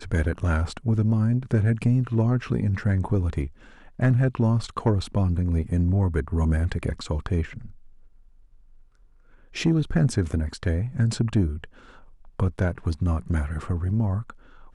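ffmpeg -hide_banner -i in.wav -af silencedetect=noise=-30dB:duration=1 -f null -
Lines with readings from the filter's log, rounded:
silence_start: 7.66
silence_end: 9.56 | silence_duration: 1.90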